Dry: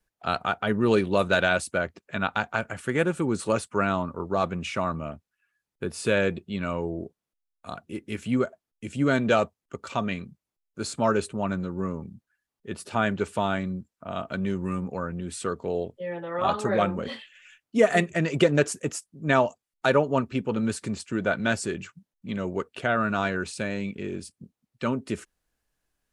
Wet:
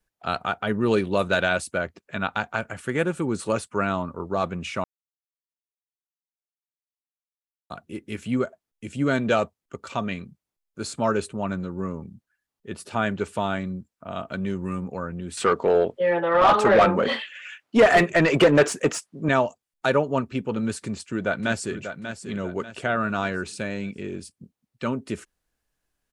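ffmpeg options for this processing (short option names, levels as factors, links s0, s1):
-filter_complex "[0:a]asettb=1/sr,asplit=3[s0][s1][s2];[s0]atrim=end=15.374[s3];[s1]atrim=start=15.37:end=19.29,asetpts=PTS-STARTPTS,afade=t=in:d=0.004:c=qsin,afade=t=out:st=3.916:d=0.004:c=qsin,asplit=2[s4][s5];[s5]highpass=f=720:p=1,volume=14.1,asoftclip=type=tanh:threshold=0.501[s6];[s4][s6]amix=inputs=2:normalize=0,lowpass=f=1700:p=1,volume=0.501[s7];[s2]atrim=start=19.286[s8];[s3][s7]acrossfade=d=0.004:c1=hsin:c2=qsin[s9];[s9][s8]acrossfade=d=0.004:c1=qsin:c2=hsin,asplit=2[s10][s11];[s11]afade=t=in:st=20.83:d=0.01,afade=t=out:st=21.78:d=0.01,aecho=0:1:590|1180|1770|2360:0.354813|0.141925|0.0567701|0.0227081[s12];[s10][s12]amix=inputs=2:normalize=0,asplit=3[s13][s14][s15];[s13]atrim=end=4.84,asetpts=PTS-STARTPTS,afade=t=out:st=4.836:d=0.004:c=hsin[s16];[s14]atrim=start=4.84:end=7.7,asetpts=PTS-STARTPTS,volume=0[s17];[s15]atrim=start=7.7,asetpts=PTS-STARTPTS,afade=t=in:d=0.004:c=hsin[s18];[s16][s17][s18]concat=n=3:v=0:a=1"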